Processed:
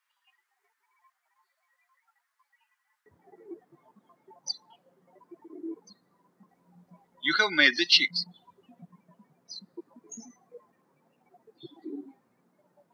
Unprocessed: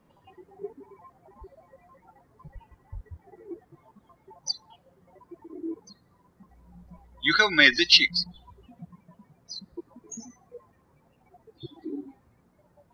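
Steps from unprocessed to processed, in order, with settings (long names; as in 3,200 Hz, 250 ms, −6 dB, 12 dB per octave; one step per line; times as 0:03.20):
high-pass filter 1,400 Hz 24 dB per octave, from 0:03.06 170 Hz
level −3.5 dB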